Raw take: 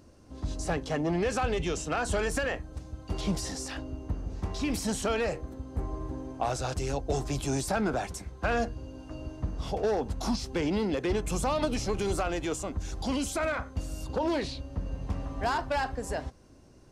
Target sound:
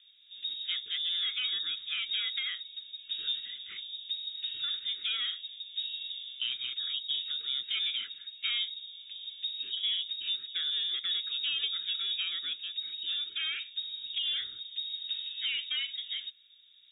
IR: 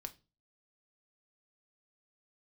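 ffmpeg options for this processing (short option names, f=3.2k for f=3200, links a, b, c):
-filter_complex "[0:a]acrossover=split=2900[a][b];[b]acompressor=threshold=-44dB:ratio=4:attack=1:release=60[c];[a][c]amix=inputs=2:normalize=0,lowpass=f=3.2k:t=q:w=0.5098,lowpass=f=3.2k:t=q:w=0.6013,lowpass=f=3.2k:t=q:w=0.9,lowpass=f=3.2k:t=q:w=2.563,afreqshift=-3800,asuperstop=centerf=780:order=8:qfactor=0.84,volume=-4.5dB"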